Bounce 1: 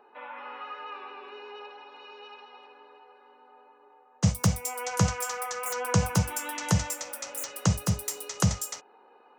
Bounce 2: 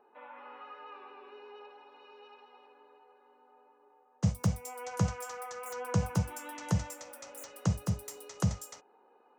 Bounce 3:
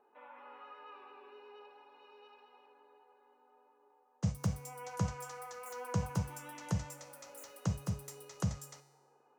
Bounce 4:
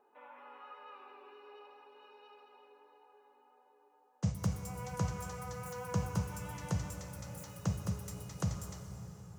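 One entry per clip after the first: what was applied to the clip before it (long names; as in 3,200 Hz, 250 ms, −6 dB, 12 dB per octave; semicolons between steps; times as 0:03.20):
tilt shelving filter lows +4 dB, about 1,200 Hz; level −8.5 dB
tuned comb filter 140 Hz, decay 1.1 s, harmonics all, mix 60%; level +2.5 dB
convolution reverb RT60 4.3 s, pre-delay 74 ms, DRR 7 dB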